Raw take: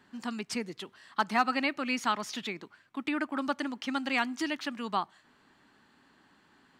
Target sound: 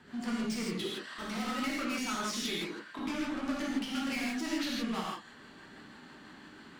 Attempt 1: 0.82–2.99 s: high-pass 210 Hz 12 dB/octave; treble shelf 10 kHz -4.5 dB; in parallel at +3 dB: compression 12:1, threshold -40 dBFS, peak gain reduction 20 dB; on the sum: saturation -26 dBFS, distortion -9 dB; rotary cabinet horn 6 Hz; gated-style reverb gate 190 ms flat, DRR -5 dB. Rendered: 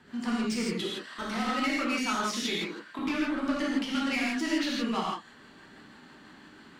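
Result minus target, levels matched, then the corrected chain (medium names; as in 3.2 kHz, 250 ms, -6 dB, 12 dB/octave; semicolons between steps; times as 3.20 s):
saturation: distortion -5 dB
0.82–2.99 s: high-pass 210 Hz 12 dB/octave; treble shelf 10 kHz -4.5 dB; in parallel at +3 dB: compression 12:1, threshold -40 dBFS, peak gain reduction 20 dB; on the sum: saturation -35 dBFS, distortion -4 dB; rotary cabinet horn 6 Hz; gated-style reverb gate 190 ms flat, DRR -5 dB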